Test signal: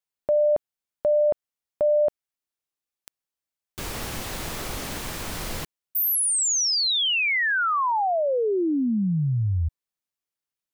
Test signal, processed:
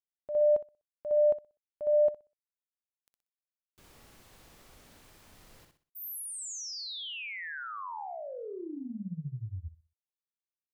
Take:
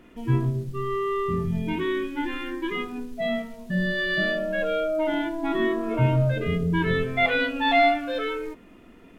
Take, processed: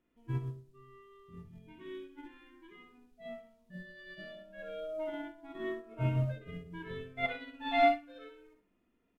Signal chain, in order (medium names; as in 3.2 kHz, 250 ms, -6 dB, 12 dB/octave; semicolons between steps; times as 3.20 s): on a send: feedback delay 62 ms, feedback 33%, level -5 dB; on the sum: upward expansion 2.5:1, over -27 dBFS; trim -7.5 dB